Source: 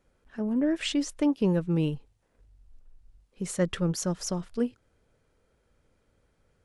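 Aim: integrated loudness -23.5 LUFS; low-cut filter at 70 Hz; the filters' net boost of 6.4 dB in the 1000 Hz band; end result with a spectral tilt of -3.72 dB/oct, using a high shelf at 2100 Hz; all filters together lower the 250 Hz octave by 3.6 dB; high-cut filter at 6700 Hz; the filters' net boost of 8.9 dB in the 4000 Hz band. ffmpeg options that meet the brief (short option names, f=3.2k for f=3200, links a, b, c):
-af "highpass=70,lowpass=6.7k,equalizer=f=250:t=o:g=-5.5,equalizer=f=1k:t=o:g=6.5,highshelf=f=2.1k:g=6.5,equalizer=f=4k:t=o:g=6,volume=5dB"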